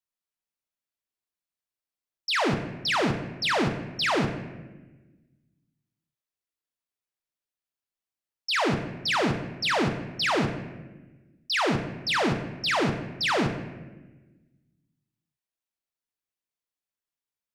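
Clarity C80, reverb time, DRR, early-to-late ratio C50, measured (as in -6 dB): 10.0 dB, 1.2 s, 5.0 dB, 8.0 dB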